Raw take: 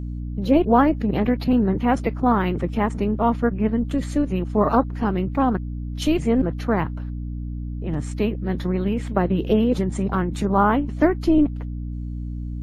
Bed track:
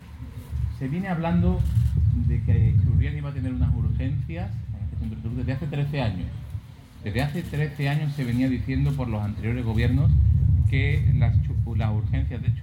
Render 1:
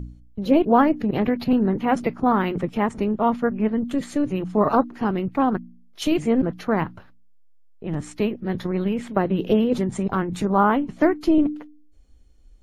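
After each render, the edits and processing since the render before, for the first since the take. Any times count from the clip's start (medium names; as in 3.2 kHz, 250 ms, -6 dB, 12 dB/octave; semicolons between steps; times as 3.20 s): de-hum 60 Hz, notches 5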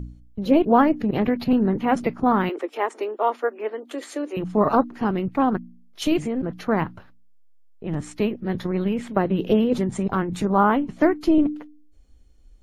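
2.49–4.37 s: steep high-pass 320 Hz 48 dB/octave; 6.20–6.61 s: compression, threshold -22 dBFS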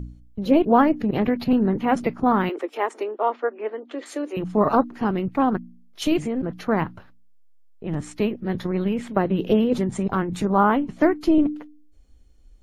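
3.03–4.06 s: distance through air 180 m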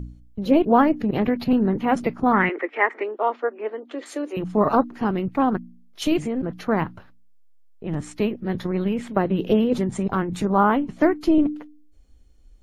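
2.33–3.04 s: resonant low-pass 2 kHz, resonance Q 5.3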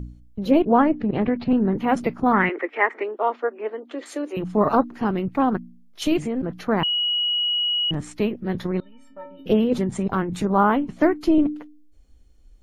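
0.62–1.72 s: distance through air 210 m; 6.83–7.91 s: bleep 2.91 kHz -19.5 dBFS; 8.80–9.46 s: inharmonic resonator 270 Hz, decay 0.57 s, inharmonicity 0.03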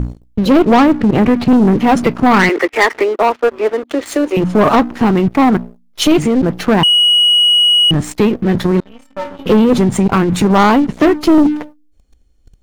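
waveshaping leveller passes 3; in parallel at -1 dB: compression, threshold -21 dBFS, peak gain reduction 12 dB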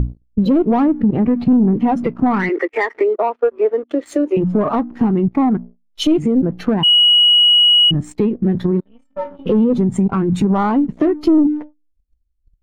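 compression 10:1, threshold -14 dBFS, peak gain reduction 8 dB; spectral contrast expander 1.5:1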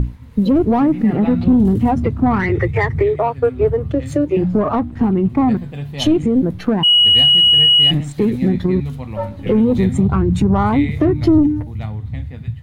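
add bed track -1.5 dB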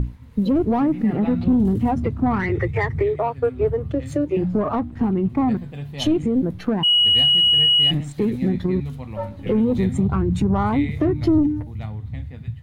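trim -5 dB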